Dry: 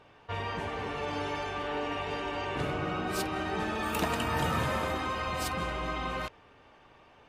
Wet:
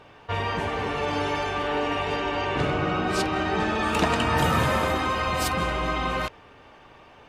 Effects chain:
0:02.16–0:04.38: low-pass filter 7,300 Hz 12 dB per octave
level +7.5 dB

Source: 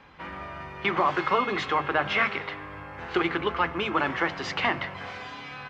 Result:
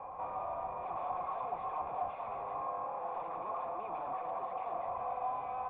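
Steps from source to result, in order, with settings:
sub-octave generator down 1 octave, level +3 dB
0:02.62–0:04.85: high-pass filter 180 Hz 12 dB per octave
sine wavefolder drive 16 dB, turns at −9.5 dBFS
parametric band 520 Hz +12 dB 0.49 octaves
hard clipping −22 dBFS, distortion −5 dB
formant resonators in series a
high-shelf EQ 2,700 Hz +8 dB
level −2.5 dB

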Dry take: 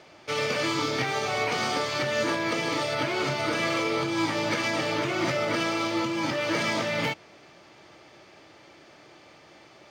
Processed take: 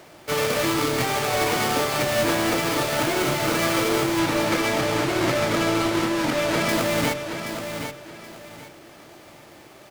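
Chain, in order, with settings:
each half-wave held at its own peak
hum removal 45.35 Hz, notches 12
0:04.19–0:06.69: high-shelf EQ 10,000 Hz −10.5 dB
repeating echo 776 ms, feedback 27%, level −8 dB

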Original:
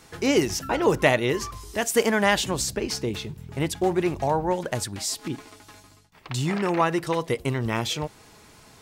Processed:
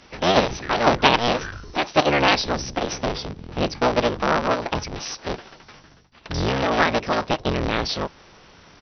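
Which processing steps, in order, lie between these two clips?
sub-harmonics by changed cycles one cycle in 3, inverted
downsampling to 11,025 Hz
formants moved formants +5 semitones
level +3 dB

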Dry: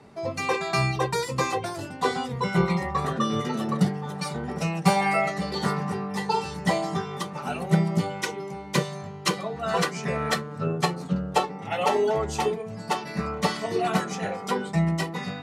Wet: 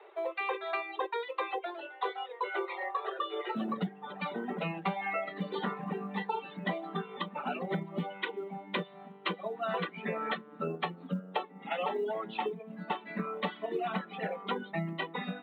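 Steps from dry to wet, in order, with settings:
Butterworth high-pass 340 Hz 96 dB per octave, from 0:03.55 170 Hz
reverb reduction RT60 1.3 s
Butterworth low-pass 3,800 Hz 96 dB per octave
downward compressor 5 to 1, threshold −31 dBFS, peak gain reduction 14.5 dB
floating-point word with a short mantissa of 6 bits

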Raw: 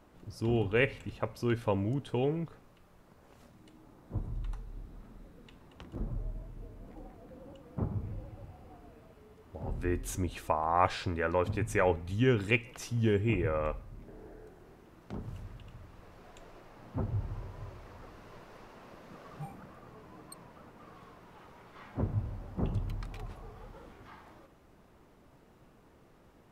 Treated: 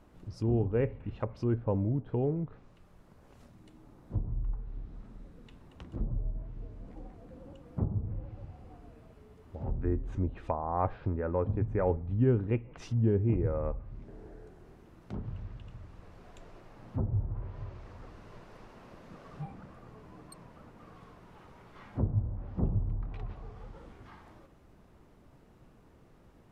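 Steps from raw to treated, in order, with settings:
low-shelf EQ 230 Hz +6.5 dB
treble cut that deepens with the level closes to 890 Hz, closed at −26.5 dBFS
level −2 dB

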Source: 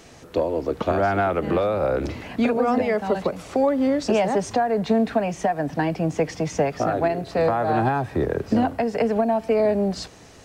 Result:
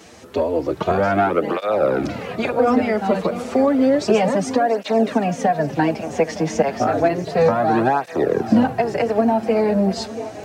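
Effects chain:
high-pass filter 99 Hz
feedback echo with a long and a short gap by turns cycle 911 ms, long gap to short 3 to 1, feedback 57%, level −16 dB
through-zero flanger with one copy inverted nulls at 0.31 Hz, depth 7.9 ms
level +6.5 dB

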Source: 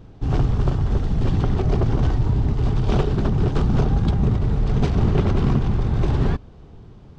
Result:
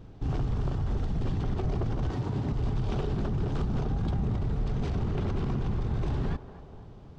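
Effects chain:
0:02.11–0:02.52: high-pass filter 130 Hz 12 dB per octave
brickwall limiter −18 dBFS, peak gain reduction 10.5 dB
feedback echo with a band-pass in the loop 241 ms, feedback 61%, band-pass 700 Hz, level −11 dB
level −4 dB

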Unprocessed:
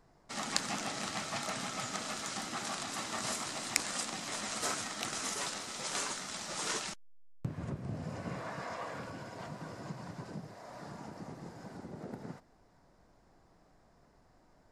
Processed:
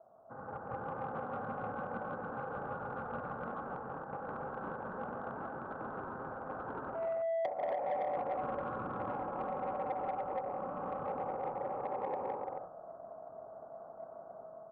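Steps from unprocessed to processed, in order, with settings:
downward compressor 4 to 1, threshold −44 dBFS, peak gain reduction 17.5 dB
low-shelf EQ 180 Hz +11 dB
automatic gain control gain up to 9.5 dB
pitch shifter −7 semitones
ring modulation 660 Hz
Butterworth low-pass 1,500 Hz 72 dB per octave
loudspeakers that aren't time-aligned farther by 62 metres −4 dB, 94 metres −4 dB
on a send at −13 dB: convolution reverb RT60 0.60 s, pre-delay 4 ms
on the sum: soft clipping −27 dBFS, distortion −17 dB
high-pass filter 120 Hz 6 dB per octave
level −1 dB

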